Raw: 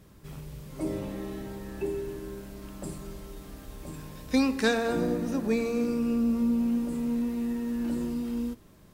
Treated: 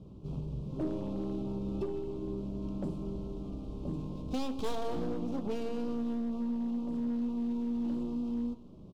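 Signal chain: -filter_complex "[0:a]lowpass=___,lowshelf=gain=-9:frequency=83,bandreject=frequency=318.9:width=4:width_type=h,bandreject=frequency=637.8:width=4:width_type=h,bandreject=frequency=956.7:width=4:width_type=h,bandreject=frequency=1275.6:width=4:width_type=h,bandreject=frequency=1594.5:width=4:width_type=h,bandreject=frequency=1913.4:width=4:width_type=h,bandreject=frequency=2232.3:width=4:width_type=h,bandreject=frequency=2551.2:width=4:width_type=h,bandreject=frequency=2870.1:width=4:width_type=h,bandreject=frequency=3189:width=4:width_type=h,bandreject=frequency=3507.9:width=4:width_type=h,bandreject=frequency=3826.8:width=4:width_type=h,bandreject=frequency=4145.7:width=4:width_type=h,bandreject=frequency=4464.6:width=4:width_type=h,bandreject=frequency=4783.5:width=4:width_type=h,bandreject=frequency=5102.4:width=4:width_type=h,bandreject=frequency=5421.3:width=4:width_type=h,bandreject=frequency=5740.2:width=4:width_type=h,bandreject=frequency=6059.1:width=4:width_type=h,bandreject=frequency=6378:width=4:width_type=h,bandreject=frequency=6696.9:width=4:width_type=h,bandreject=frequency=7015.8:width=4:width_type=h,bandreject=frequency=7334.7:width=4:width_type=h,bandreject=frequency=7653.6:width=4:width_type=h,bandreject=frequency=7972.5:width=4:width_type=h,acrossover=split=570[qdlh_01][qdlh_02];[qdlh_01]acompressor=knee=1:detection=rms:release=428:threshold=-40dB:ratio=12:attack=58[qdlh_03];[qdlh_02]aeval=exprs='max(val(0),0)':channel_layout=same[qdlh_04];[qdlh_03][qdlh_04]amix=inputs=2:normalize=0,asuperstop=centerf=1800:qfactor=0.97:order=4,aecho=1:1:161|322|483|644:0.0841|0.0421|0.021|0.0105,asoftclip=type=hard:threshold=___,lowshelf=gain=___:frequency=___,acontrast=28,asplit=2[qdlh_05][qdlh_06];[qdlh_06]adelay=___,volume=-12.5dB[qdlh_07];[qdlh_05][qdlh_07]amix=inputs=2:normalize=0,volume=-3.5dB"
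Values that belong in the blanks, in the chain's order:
2600, -34.5dB, 7, 440, 16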